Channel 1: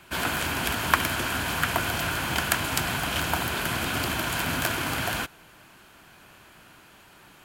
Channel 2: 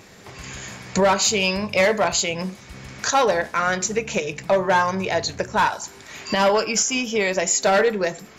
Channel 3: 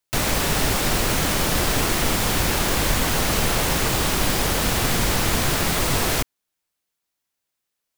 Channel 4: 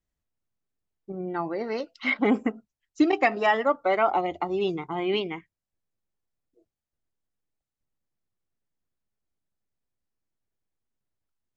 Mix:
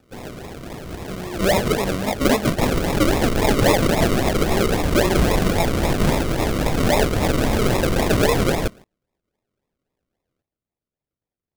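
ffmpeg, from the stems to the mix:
ffmpeg -i stem1.wav -i stem2.wav -i stem3.wav -i stem4.wav -filter_complex "[0:a]asoftclip=type=tanh:threshold=-19dB,volume=-5.5dB[link_01];[1:a]adelay=450,volume=-1.5dB[link_02];[2:a]adelay=2450,volume=0.5dB[link_03];[3:a]highpass=60,volume=1dB[link_04];[link_01][link_02][link_03][link_04]amix=inputs=4:normalize=0,acrusher=samples=41:mix=1:aa=0.000001:lfo=1:lforange=24.6:lforate=3.7" out.wav

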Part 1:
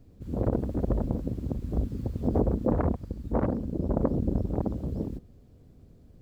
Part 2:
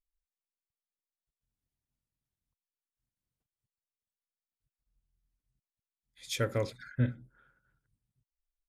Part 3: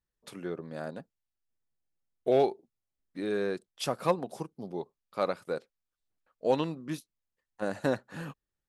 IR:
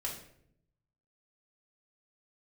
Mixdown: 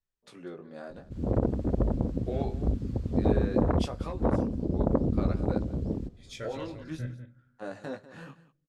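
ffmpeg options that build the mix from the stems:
-filter_complex "[0:a]adelay=900,volume=0.5dB[link_01];[1:a]volume=-6.5dB,asplit=3[link_02][link_03][link_04];[link_03]volume=-12.5dB[link_05];[link_04]volume=-12.5dB[link_06];[2:a]alimiter=limit=-19.5dB:level=0:latency=1:release=21,volume=-2dB,asplit=3[link_07][link_08][link_09];[link_08]volume=-21.5dB[link_10];[link_09]volume=-20dB[link_11];[link_02][link_07]amix=inputs=2:normalize=0,flanger=delay=15.5:depth=6.9:speed=0.54,alimiter=level_in=2.5dB:limit=-24dB:level=0:latency=1:release=247,volume=-2.5dB,volume=0dB[link_12];[3:a]atrim=start_sample=2205[link_13];[link_05][link_10]amix=inputs=2:normalize=0[link_14];[link_14][link_13]afir=irnorm=-1:irlink=0[link_15];[link_06][link_11]amix=inputs=2:normalize=0,aecho=0:1:195:1[link_16];[link_01][link_12][link_15][link_16]amix=inputs=4:normalize=0,lowpass=7800"

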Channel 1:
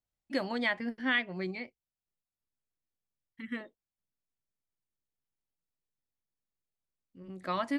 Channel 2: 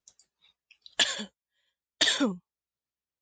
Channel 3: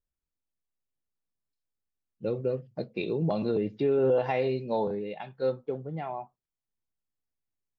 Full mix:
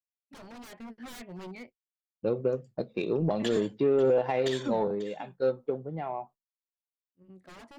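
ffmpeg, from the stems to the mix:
ffmpeg -i stem1.wav -i stem2.wav -i stem3.wav -filter_complex "[0:a]aeval=exprs='0.02*(abs(mod(val(0)/0.02+3,4)-2)-1)':channel_layout=same,dynaudnorm=framelen=150:gausssize=11:maxgain=6dB,volume=-10.5dB[link_01];[1:a]adelay=2450,volume=-8.5dB,asplit=2[link_02][link_03];[link_03]volume=-19.5dB[link_04];[2:a]highpass=frequency=200:poles=1,agate=range=-33dB:threshold=-46dB:ratio=3:detection=peak,volume=1dB[link_05];[link_02][link_05]amix=inputs=2:normalize=0,aeval=exprs='0.211*(cos(1*acos(clip(val(0)/0.211,-1,1)))-cos(1*PI/2))+0.00422*(cos(5*acos(clip(val(0)/0.211,-1,1)))-cos(5*PI/2))+0.0106*(cos(7*acos(clip(val(0)/0.211,-1,1)))-cos(7*PI/2))':channel_layout=same,alimiter=limit=-19.5dB:level=0:latency=1:release=157,volume=0dB[link_06];[link_04]aecho=0:1:541:1[link_07];[link_01][link_06][link_07]amix=inputs=3:normalize=0,tiltshelf=frequency=1400:gain=3.5,agate=range=-33dB:threshold=-48dB:ratio=3:detection=peak" out.wav

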